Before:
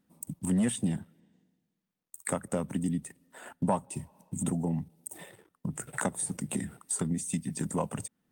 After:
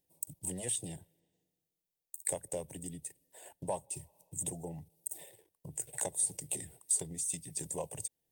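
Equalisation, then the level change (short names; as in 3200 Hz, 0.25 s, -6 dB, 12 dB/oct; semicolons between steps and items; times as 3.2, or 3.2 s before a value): high shelf 7000 Hz +10.5 dB; dynamic EQ 4400 Hz, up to +3 dB, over -43 dBFS, Q 0.83; fixed phaser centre 540 Hz, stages 4; -5.0 dB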